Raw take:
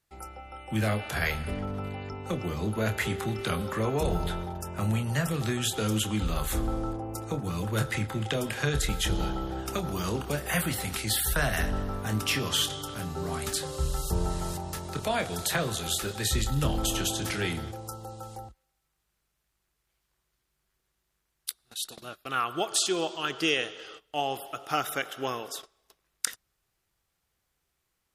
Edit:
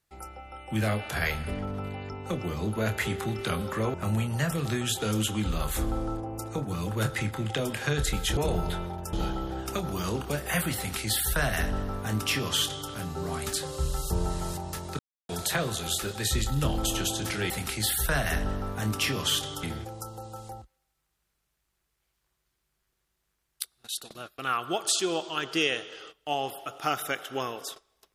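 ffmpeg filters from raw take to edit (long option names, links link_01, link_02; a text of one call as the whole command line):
ffmpeg -i in.wav -filter_complex "[0:a]asplit=8[link_01][link_02][link_03][link_04][link_05][link_06][link_07][link_08];[link_01]atrim=end=3.942[link_09];[link_02]atrim=start=4.698:end=9.132[link_10];[link_03]atrim=start=3.938:end=4.702[link_11];[link_04]atrim=start=9.128:end=14.99,asetpts=PTS-STARTPTS,afade=type=out:start_time=5.858:duration=0.004:curve=hsin[link_12];[link_05]atrim=start=14.99:end=15.29,asetpts=PTS-STARTPTS,volume=0[link_13];[link_06]atrim=start=15.29:end=17.502,asetpts=PTS-STARTPTS,afade=type=in:duration=0.004:curve=hsin[link_14];[link_07]atrim=start=10.768:end=12.902[link_15];[link_08]atrim=start=17.498[link_16];[link_09][link_10]acrossfade=duration=0.004:curve1=hsin:curve2=hsin[link_17];[link_17][link_11]acrossfade=duration=0.004:curve1=hsin:curve2=hsin[link_18];[link_12][link_13][link_14]concat=n=3:v=0:a=1[link_19];[link_18][link_19]acrossfade=duration=0.004:curve1=hsin:curve2=hsin[link_20];[link_20][link_15]acrossfade=duration=0.004:curve1=hsin:curve2=hsin[link_21];[link_21][link_16]acrossfade=duration=0.004:curve1=hsin:curve2=hsin" out.wav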